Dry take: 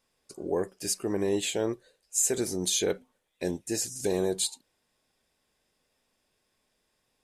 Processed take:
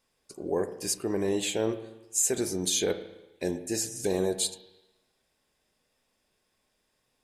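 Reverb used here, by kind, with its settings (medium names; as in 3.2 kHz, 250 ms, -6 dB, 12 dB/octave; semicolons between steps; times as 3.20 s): spring tank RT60 1 s, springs 31/36/54 ms, chirp 50 ms, DRR 10 dB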